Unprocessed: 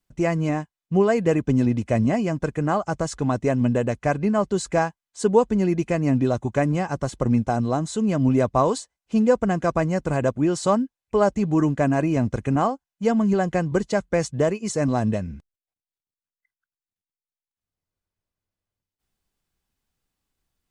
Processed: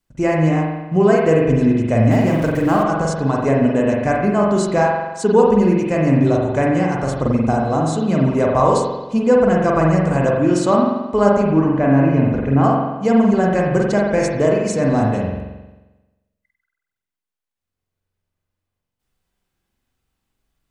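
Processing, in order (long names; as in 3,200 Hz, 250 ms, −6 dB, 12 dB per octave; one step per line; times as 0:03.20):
0:02.11–0:02.83: converter with a step at zero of −32.5 dBFS
0:11.50–0:12.64: high-frequency loss of the air 220 metres
spring reverb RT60 1.1 s, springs 44 ms, chirp 45 ms, DRR −2 dB
level +2 dB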